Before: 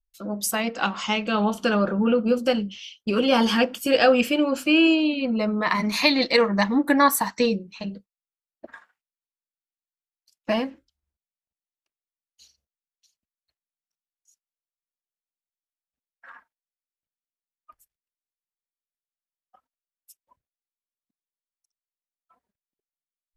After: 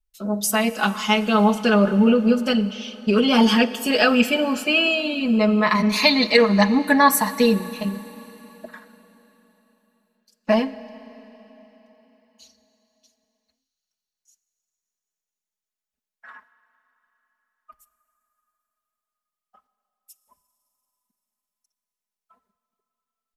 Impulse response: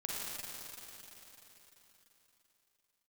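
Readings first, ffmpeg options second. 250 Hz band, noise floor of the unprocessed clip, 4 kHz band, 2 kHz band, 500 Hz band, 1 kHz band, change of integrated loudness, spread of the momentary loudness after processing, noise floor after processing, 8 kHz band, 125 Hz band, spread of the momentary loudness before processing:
+3.5 dB, under -85 dBFS, +3.5 dB, +3.5 dB, +2.0 dB, +3.0 dB, +3.0 dB, 10 LU, under -85 dBFS, +3.5 dB, +6.0 dB, 11 LU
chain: -filter_complex "[0:a]aecho=1:1:4.7:0.86,asplit=2[s0][s1];[1:a]atrim=start_sample=2205[s2];[s1][s2]afir=irnorm=-1:irlink=0,volume=0.158[s3];[s0][s3]amix=inputs=2:normalize=0"

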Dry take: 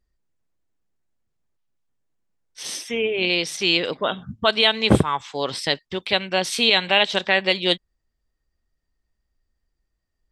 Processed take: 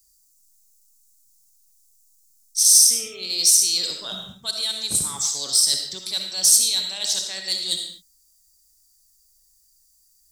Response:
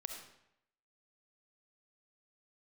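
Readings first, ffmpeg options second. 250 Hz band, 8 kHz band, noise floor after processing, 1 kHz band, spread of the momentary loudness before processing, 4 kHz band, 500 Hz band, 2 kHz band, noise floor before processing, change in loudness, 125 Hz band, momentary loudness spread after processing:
-18.0 dB, +19.5 dB, -61 dBFS, -17.5 dB, 10 LU, 0.0 dB, -19.0 dB, -17.5 dB, -77 dBFS, +2.5 dB, -17.0 dB, 14 LU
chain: -filter_complex "[0:a]bass=f=250:g=2,treble=f=4000:g=12,areverse,acompressor=threshold=0.0398:ratio=5,areverse,aexciter=amount=8.1:drive=9.5:freq=4300,acrossover=split=320|790[s0][s1][s2];[s0]acrusher=bits=6:mode=log:mix=0:aa=0.000001[s3];[s1]asoftclip=type=tanh:threshold=0.0119[s4];[s3][s4][s2]amix=inputs=3:normalize=0[s5];[1:a]atrim=start_sample=2205,afade=t=out:st=0.3:d=0.01,atrim=end_sample=13671[s6];[s5][s6]afir=irnorm=-1:irlink=0,volume=0.708"

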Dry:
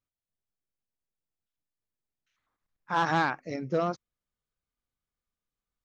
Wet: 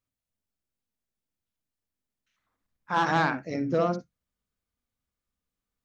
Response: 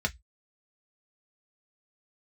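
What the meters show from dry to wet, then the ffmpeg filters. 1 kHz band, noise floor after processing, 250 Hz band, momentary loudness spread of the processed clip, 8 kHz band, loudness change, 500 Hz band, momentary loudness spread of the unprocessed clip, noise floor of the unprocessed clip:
+1.5 dB, under -85 dBFS, +4.0 dB, 7 LU, no reading, +2.0 dB, +3.0 dB, 9 LU, under -85 dBFS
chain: -filter_complex "[0:a]asplit=2[s0][s1];[s1]equalizer=f=250:t=o:w=1:g=10,equalizer=f=500:t=o:w=1:g=4,equalizer=f=1000:t=o:w=1:g=-8,equalizer=f=4000:t=o:w=1:g=-12[s2];[1:a]atrim=start_sample=2205,adelay=57[s3];[s2][s3]afir=irnorm=-1:irlink=0,volume=0.188[s4];[s0][s4]amix=inputs=2:normalize=0,volume=1.19"

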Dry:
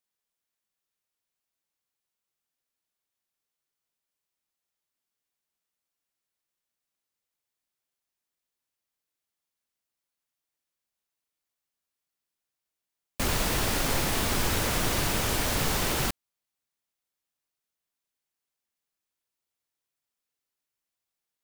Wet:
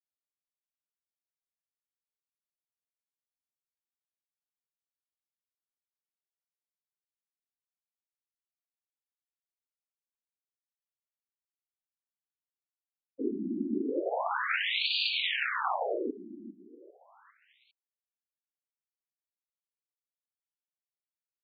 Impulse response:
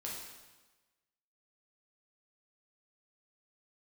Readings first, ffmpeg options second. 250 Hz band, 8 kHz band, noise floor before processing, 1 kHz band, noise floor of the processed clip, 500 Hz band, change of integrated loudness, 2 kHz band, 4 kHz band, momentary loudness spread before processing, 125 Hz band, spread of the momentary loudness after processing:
-1.5 dB, under -40 dB, under -85 dBFS, -2.0 dB, under -85 dBFS, -1.5 dB, -4.0 dB, -0.5 dB, -1.0 dB, 5 LU, under -20 dB, 14 LU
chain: -af "acrusher=bits=5:dc=4:mix=0:aa=0.000001,aecho=1:1:401|802|1203|1604:0.224|0.0895|0.0358|0.0143,afftfilt=real='re*between(b*sr/1024,250*pow(3400/250,0.5+0.5*sin(2*PI*0.35*pts/sr))/1.41,250*pow(3400/250,0.5+0.5*sin(2*PI*0.35*pts/sr))*1.41)':imag='im*between(b*sr/1024,250*pow(3400/250,0.5+0.5*sin(2*PI*0.35*pts/sr))/1.41,250*pow(3400/250,0.5+0.5*sin(2*PI*0.35*pts/sr))*1.41)':win_size=1024:overlap=0.75,volume=1.88"

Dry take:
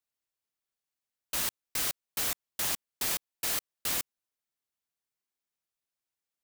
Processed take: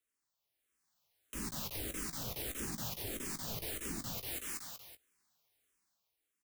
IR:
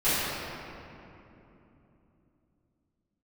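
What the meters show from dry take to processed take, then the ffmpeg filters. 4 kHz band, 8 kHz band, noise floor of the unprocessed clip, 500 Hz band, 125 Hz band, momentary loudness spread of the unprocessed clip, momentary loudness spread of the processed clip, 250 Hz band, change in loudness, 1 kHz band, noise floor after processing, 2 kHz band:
-8.5 dB, -8.0 dB, under -85 dBFS, -0.5 dB, +6.0 dB, 1 LU, 5 LU, +5.0 dB, -8.5 dB, -6.5 dB, under -85 dBFS, -8.0 dB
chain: -filter_complex "[0:a]dynaudnorm=f=120:g=13:m=2.99,asplit=2[s0][s1];[s1]aeval=exprs='(mod(4.47*val(0)+1,2)-1)/4.47':c=same,volume=0.447[s2];[s0][s2]amix=inputs=2:normalize=0,aecho=1:1:188|376|564|752|940:0.531|0.228|0.0982|0.0422|0.0181,acrossover=split=430[s3][s4];[s4]acompressor=threshold=0.0224:ratio=10[s5];[s3][s5]amix=inputs=2:normalize=0,alimiter=level_in=1.78:limit=0.0631:level=0:latency=1:release=117,volume=0.562,asplit=2[s6][s7];[s7]adelay=18,volume=0.316[s8];[s6][s8]amix=inputs=2:normalize=0,asplit=2[s9][s10];[s10]afreqshift=-1.6[s11];[s9][s11]amix=inputs=2:normalize=1,volume=1.12"

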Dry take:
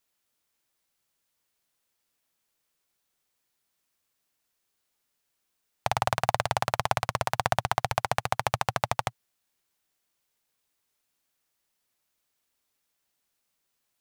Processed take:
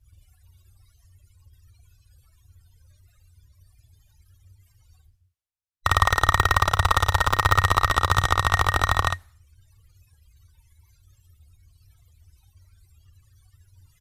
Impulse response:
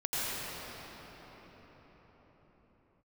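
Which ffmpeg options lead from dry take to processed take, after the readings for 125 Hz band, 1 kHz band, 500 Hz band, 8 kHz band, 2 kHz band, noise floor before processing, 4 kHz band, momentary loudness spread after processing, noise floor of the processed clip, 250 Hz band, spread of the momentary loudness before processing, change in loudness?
+10.5 dB, +6.5 dB, +0.5 dB, +6.0 dB, +10.5 dB, -79 dBFS, +8.0 dB, 5 LU, -64 dBFS, +5.0 dB, 4 LU, +8.0 dB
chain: -filter_complex "[0:a]afftfilt=real='real(if(between(b,1,1012),(2*floor((b-1)/92)+1)*92-b,b),0)':imag='imag(if(between(b,1,1012),(2*floor((b-1)/92)+1)*92-b,b),0)*if(between(b,1,1012),-1,1)':win_size=2048:overlap=0.75,aresample=32000,aresample=44100,lowshelf=f=130:t=q:w=3:g=13,acrusher=bits=8:mode=log:mix=0:aa=0.000001,areverse,acompressor=mode=upward:threshold=0.0126:ratio=2.5,areverse,apsyclip=3.98,asplit=2[s0][s1];[s1]aecho=0:1:32|54:0.251|0.631[s2];[s0][s2]amix=inputs=2:normalize=0,afftdn=nr=31:nf=-42,volume=0.531"

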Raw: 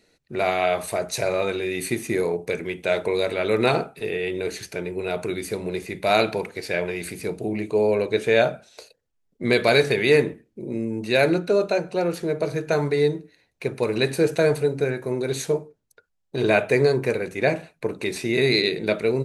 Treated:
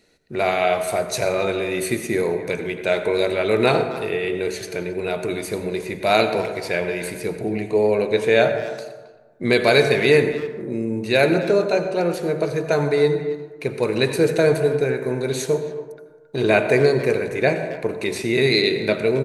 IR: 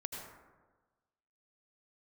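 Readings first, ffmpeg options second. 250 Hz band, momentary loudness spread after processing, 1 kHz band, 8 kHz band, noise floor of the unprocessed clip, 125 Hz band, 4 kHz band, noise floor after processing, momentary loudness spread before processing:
+2.5 dB, 10 LU, +2.5 dB, +2.0 dB, -71 dBFS, +2.5 dB, +2.0 dB, -44 dBFS, 10 LU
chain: -filter_complex "[0:a]asplit=2[s0][s1];[s1]adelay=270,highpass=300,lowpass=3400,asoftclip=type=hard:threshold=0.2,volume=0.2[s2];[s0][s2]amix=inputs=2:normalize=0,asplit=2[s3][s4];[1:a]atrim=start_sample=2205[s5];[s4][s5]afir=irnorm=-1:irlink=0,volume=0.841[s6];[s3][s6]amix=inputs=2:normalize=0,volume=0.794"

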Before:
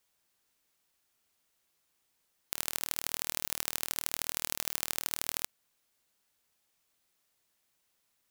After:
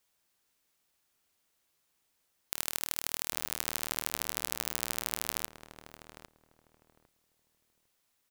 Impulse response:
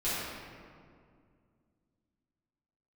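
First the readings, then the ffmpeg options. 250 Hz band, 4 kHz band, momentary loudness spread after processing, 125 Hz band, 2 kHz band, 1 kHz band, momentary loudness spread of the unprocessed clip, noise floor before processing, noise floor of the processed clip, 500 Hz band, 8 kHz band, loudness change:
+1.0 dB, 0.0 dB, 19 LU, +1.0 dB, 0.0 dB, +0.5 dB, 3 LU, -77 dBFS, -77 dBFS, +1.0 dB, 0.0 dB, 0.0 dB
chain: -filter_complex "[0:a]asplit=2[s0][s1];[s1]adelay=803,lowpass=f=880:p=1,volume=0.562,asplit=2[s2][s3];[s3]adelay=803,lowpass=f=880:p=1,volume=0.22,asplit=2[s4][s5];[s5]adelay=803,lowpass=f=880:p=1,volume=0.22[s6];[s0][s2][s4][s6]amix=inputs=4:normalize=0"

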